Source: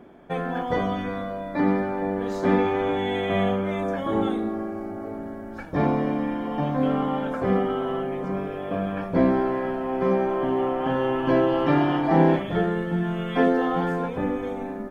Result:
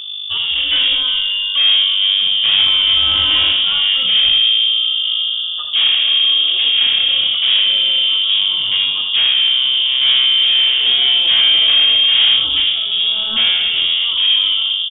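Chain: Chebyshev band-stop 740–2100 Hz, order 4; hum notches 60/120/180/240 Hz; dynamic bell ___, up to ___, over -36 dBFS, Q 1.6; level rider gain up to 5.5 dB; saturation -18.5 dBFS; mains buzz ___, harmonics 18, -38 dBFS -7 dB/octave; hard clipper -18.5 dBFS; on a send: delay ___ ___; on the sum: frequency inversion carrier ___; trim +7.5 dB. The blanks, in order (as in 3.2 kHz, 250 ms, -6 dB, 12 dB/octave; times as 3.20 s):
290 Hz, +6 dB, 50 Hz, 79 ms, -7.5 dB, 3.5 kHz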